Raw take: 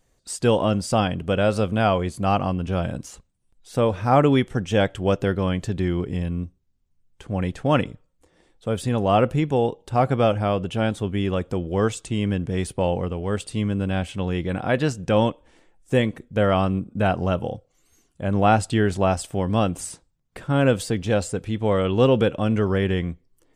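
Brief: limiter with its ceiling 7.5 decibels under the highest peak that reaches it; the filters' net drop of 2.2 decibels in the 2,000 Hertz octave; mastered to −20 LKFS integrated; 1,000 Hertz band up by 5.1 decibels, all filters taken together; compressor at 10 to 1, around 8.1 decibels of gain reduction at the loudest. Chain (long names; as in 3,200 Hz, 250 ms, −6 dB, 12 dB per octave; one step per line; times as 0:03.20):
parametric band 1,000 Hz +9 dB
parametric band 2,000 Hz −7.5 dB
downward compressor 10 to 1, threshold −17 dBFS
level +7 dB
brickwall limiter −9 dBFS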